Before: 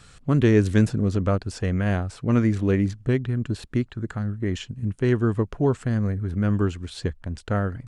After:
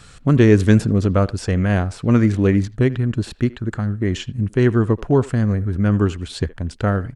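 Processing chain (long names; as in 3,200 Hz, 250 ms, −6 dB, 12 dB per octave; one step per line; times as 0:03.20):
far-end echo of a speakerphone 90 ms, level −19 dB
tempo change 1.1×
level +5.5 dB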